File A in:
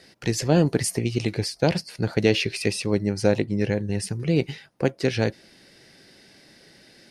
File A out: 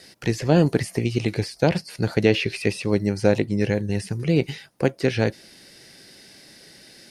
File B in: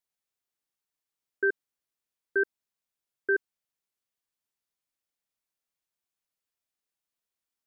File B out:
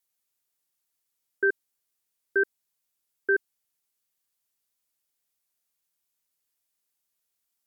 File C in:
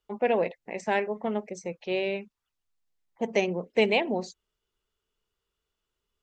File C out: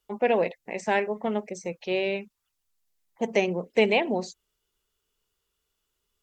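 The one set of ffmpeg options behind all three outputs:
-filter_complex "[0:a]aemphasis=mode=production:type=cd,acrossover=split=3000[a][b];[b]acompressor=threshold=-40dB:ratio=4:attack=1:release=60[c];[a][c]amix=inputs=2:normalize=0,volume=2dB"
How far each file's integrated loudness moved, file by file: +1.5, +2.0, +1.5 LU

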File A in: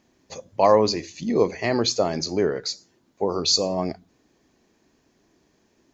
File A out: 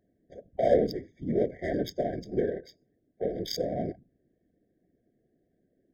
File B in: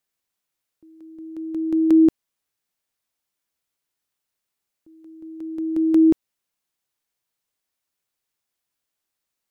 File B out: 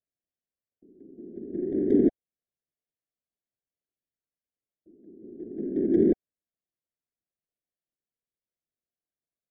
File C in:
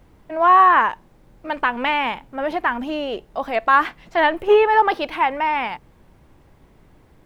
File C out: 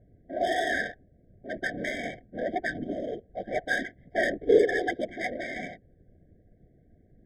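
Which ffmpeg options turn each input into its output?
-af "afftfilt=real='hypot(re,im)*cos(2*PI*random(0))':imag='hypot(re,im)*sin(2*PI*random(1))':win_size=512:overlap=0.75,adynamicsmooth=sensitivity=2.5:basefreq=1.1k,afftfilt=real='re*eq(mod(floor(b*sr/1024/770),2),0)':imag='im*eq(mod(floor(b*sr/1024/770),2),0)':win_size=1024:overlap=0.75"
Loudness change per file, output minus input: -7.5, -6.5, -11.0 LU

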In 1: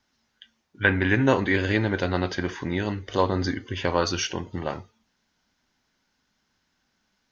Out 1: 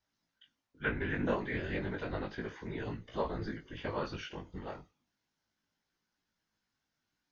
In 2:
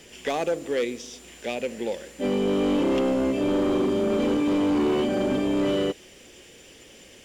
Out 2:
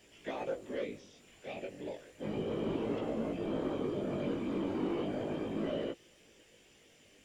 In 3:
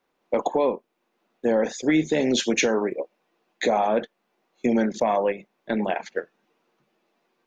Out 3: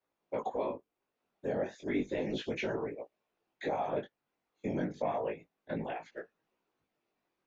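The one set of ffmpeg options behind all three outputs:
-filter_complex "[0:a]afftfilt=real='hypot(re,im)*cos(2*PI*random(0))':imag='hypot(re,im)*sin(2*PI*random(1))':win_size=512:overlap=0.75,acrossover=split=3600[a][b];[b]acompressor=threshold=-58dB:ratio=4:attack=1:release=60[c];[a][c]amix=inputs=2:normalize=0,flanger=delay=17.5:depth=3.6:speed=0.33,volume=-3.5dB"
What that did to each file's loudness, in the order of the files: -13.0, -12.5, -12.5 LU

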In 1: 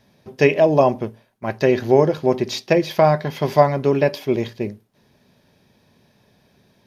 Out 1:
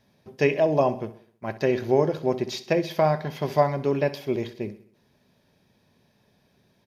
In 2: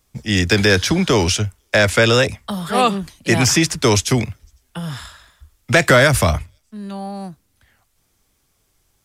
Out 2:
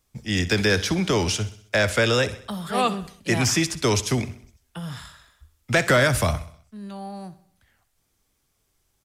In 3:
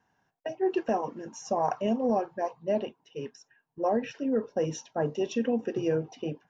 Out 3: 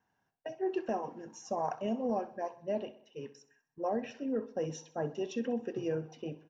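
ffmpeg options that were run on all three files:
-af "aecho=1:1:64|128|192|256|320:0.158|0.0808|0.0412|0.021|0.0107,volume=-6.5dB"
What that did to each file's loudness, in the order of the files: -6.5, -6.5, -6.5 LU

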